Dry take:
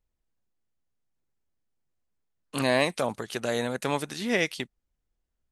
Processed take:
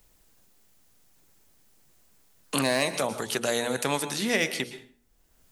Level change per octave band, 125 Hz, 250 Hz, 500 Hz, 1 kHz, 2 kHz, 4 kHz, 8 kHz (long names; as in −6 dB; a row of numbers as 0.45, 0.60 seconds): −1.0, 0.0, −0.5, 0.0, +1.0, +3.5, +7.5 decibels